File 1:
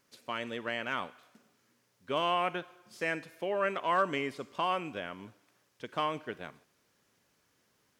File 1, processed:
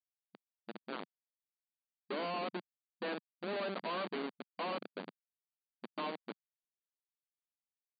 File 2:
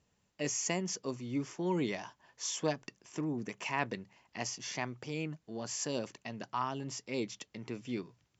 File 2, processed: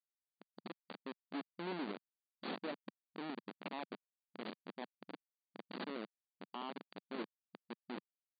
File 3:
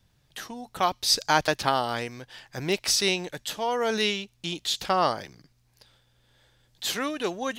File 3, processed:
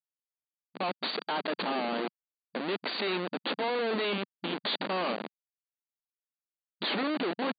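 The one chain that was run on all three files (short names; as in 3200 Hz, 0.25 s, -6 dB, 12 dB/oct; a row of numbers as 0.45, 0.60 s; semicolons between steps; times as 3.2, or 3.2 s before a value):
opening faded in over 1.27 s; Schmitt trigger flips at -32 dBFS; brick-wall FIR band-pass 180–4700 Hz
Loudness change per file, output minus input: -7.5, -10.5, -6.0 LU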